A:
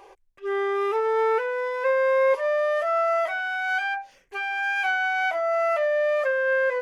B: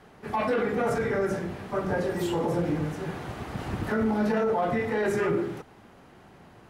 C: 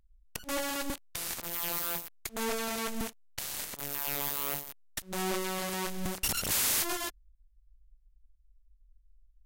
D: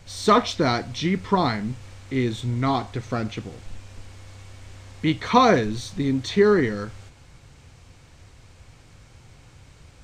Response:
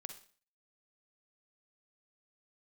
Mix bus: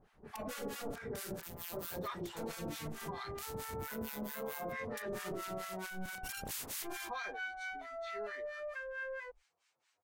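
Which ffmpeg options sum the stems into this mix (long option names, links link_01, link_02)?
-filter_complex "[0:a]highpass=frequency=750:poles=1,adelay=2500,volume=-12dB[link_01];[1:a]equalizer=frequency=66:width_type=o:width=0.77:gain=6.5,volume=-11dB[link_02];[2:a]volume=-5dB[link_03];[3:a]highpass=740,asplit=2[link_04][link_05];[link_05]adelay=8.1,afreqshift=-1.8[link_06];[link_04][link_06]amix=inputs=2:normalize=1,adelay=1750,volume=-14dB[link_07];[link_01][link_02][link_03][link_07]amix=inputs=4:normalize=0,acrossover=split=940[link_08][link_09];[link_08]aeval=exprs='val(0)*(1-1/2+1/2*cos(2*PI*4.5*n/s))':channel_layout=same[link_10];[link_09]aeval=exprs='val(0)*(1-1/2-1/2*cos(2*PI*4.5*n/s))':channel_layout=same[link_11];[link_10][link_11]amix=inputs=2:normalize=0,alimiter=level_in=8.5dB:limit=-24dB:level=0:latency=1:release=40,volume=-8.5dB"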